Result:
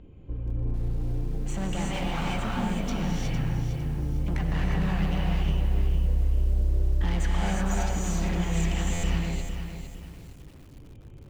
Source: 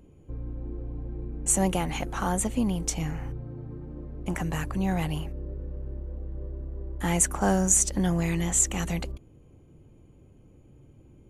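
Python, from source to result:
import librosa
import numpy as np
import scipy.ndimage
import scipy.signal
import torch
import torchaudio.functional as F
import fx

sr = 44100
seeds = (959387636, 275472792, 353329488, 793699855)

p1 = fx.ladder_lowpass(x, sr, hz=4400.0, resonance_pct=30)
p2 = fx.rider(p1, sr, range_db=3, speed_s=0.5)
p3 = p1 + (p2 * librosa.db_to_amplitude(0.0))
p4 = 10.0 ** (-30.5 / 20.0) * np.tanh(p3 / 10.0 ** (-30.5 / 20.0))
p5 = fx.low_shelf(p4, sr, hz=96.0, db=8.0)
p6 = fx.rev_gated(p5, sr, seeds[0], gate_ms=390, shape='rising', drr_db=-3.0)
p7 = fx.buffer_glitch(p6, sr, at_s=(8.93,), block=512, repeats=8)
y = fx.echo_crushed(p7, sr, ms=456, feedback_pct=35, bits=8, wet_db=-8)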